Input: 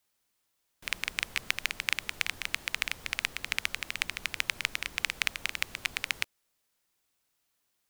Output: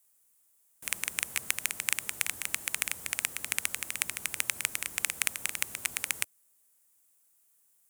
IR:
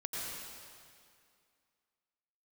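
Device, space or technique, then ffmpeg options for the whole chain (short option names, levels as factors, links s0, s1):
budget condenser microphone: -af "highpass=73,highshelf=f=6300:t=q:w=1.5:g=12,volume=0.841"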